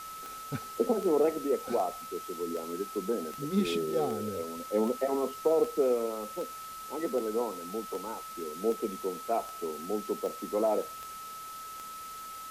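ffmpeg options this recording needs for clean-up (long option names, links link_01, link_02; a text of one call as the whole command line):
ffmpeg -i in.wav -af "adeclick=threshold=4,bandreject=frequency=1300:width=30,afwtdn=0.004" out.wav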